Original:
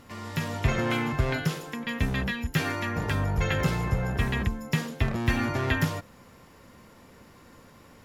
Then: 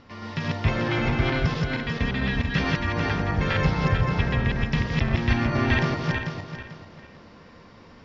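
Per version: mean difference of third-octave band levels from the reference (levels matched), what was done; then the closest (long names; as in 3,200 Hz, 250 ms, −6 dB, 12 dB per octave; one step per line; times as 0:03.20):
7.0 dB: feedback delay that plays each chunk backwards 221 ms, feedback 53%, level 0 dB
Butterworth low-pass 5,700 Hz 48 dB per octave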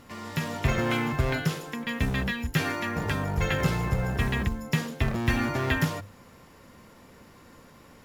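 1.0 dB: mains-hum notches 50/100 Hz
in parallel at −6 dB: floating-point word with a short mantissa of 2 bits
on the sum: level −3 dB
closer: second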